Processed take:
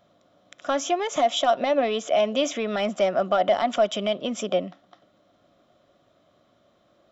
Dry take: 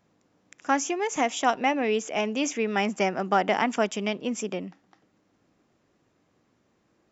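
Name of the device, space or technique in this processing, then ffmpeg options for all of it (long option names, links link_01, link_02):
soft clipper into limiter: -af "asoftclip=type=tanh:threshold=-14.5dB,alimiter=limit=-21dB:level=0:latency=1:release=126,superequalizer=8b=3.98:10b=2:13b=2.82:15b=0.708:16b=0.708,volume=2dB"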